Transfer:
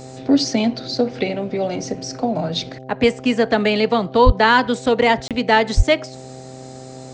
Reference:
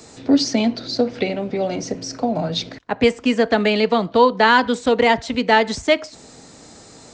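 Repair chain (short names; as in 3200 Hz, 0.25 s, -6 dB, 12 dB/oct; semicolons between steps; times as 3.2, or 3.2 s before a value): de-hum 130.1 Hz, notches 6; de-plosive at 4.25/5.76; interpolate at 5.28, 27 ms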